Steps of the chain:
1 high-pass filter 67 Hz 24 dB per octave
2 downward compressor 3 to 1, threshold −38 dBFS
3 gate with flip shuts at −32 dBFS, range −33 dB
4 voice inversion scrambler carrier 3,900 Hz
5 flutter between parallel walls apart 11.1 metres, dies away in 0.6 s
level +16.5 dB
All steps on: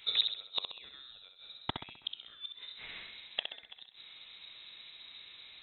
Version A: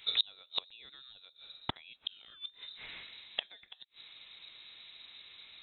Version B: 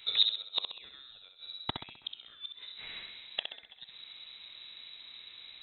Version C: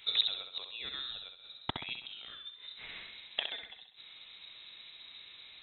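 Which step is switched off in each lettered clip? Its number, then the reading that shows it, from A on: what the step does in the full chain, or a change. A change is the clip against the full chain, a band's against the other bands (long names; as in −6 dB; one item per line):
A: 5, echo-to-direct ratio −5.5 dB to none audible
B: 1, 4 kHz band +3.0 dB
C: 2, average gain reduction 8.0 dB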